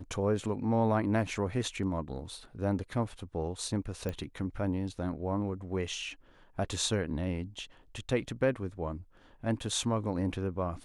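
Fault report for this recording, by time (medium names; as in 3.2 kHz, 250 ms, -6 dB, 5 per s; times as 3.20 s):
4.09 s: pop -22 dBFS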